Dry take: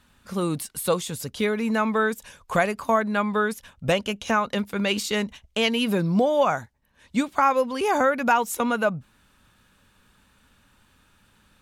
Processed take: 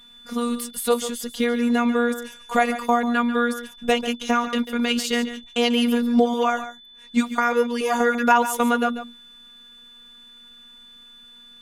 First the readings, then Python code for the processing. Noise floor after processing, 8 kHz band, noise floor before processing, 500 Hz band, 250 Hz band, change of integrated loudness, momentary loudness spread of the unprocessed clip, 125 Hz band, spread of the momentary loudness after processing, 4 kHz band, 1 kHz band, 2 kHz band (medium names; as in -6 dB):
-48 dBFS, +2.0 dB, -62 dBFS, +0.5 dB, +4.5 dB, +2.0 dB, 7 LU, under -10 dB, 8 LU, +3.0 dB, +1.5 dB, +1.5 dB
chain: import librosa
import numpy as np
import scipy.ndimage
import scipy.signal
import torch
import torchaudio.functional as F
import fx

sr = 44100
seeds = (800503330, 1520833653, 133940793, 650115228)

y = fx.robotise(x, sr, hz=239.0)
y = y + 10.0 ** (-51.0 / 20.0) * np.sin(2.0 * np.pi * 3500.0 * np.arange(len(y)) / sr)
y = y + 10.0 ** (-12.0 / 20.0) * np.pad(y, (int(142 * sr / 1000.0), 0))[:len(y)]
y = F.gain(torch.from_numpy(y), 4.0).numpy()